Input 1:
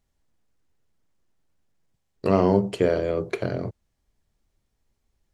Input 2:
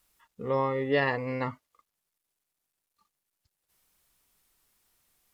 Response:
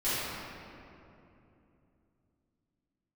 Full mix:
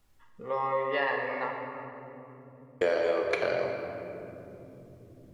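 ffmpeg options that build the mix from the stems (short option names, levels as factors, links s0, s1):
-filter_complex "[0:a]volume=1.33,asplit=3[s0][s1][s2];[s0]atrim=end=1.29,asetpts=PTS-STARTPTS,afade=t=out:st=1.286:d=0.004:c=hsin[s3];[s1]atrim=start=1.29:end=2.81,asetpts=PTS-STARTPTS,volume=0[s4];[s2]atrim=start=2.81,asetpts=PTS-STARTPTS,afade=t=in:d=0.004:c=hsin[s5];[s3][s4][s5]concat=n=3:v=0:a=1,asplit=2[s6][s7];[s7]volume=0.266[s8];[1:a]highshelf=f=3700:g=-11.5,volume=0.891,asplit=2[s9][s10];[s10]volume=0.316[s11];[2:a]atrim=start_sample=2205[s12];[s8][s11]amix=inputs=2:normalize=0[s13];[s13][s12]afir=irnorm=-1:irlink=0[s14];[s6][s9][s14]amix=inputs=3:normalize=0,acrossover=split=510|5100[s15][s16][s17];[s15]acompressor=threshold=0.00316:ratio=4[s18];[s16]acompressor=threshold=0.0708:ratio=4[s19];[s17]acompressor=threshold=0.00141:ratio=4[s20];[s18][s19][s20]amix=inputs=3:normalize=0"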